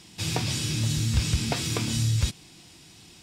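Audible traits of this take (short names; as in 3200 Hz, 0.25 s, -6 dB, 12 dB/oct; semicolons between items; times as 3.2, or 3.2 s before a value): noise floor -52 dBFS; spectral tilt -4.0 dB/oct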